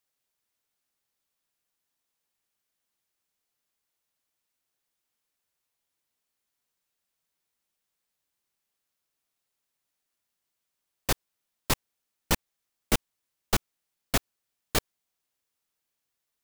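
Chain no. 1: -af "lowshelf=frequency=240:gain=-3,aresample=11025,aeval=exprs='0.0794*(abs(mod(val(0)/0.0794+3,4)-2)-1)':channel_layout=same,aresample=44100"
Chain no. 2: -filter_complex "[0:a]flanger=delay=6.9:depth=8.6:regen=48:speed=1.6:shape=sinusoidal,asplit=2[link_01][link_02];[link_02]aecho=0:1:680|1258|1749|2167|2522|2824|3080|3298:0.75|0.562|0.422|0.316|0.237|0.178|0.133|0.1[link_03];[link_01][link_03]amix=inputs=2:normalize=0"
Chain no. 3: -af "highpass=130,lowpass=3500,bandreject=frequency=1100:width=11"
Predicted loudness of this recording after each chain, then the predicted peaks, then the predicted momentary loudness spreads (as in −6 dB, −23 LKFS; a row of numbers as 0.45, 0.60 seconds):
−36.5, −34.0, −34.5 LKFS; −18.5, −13.0, −13.5 dBFS; 1, 9, 2 LU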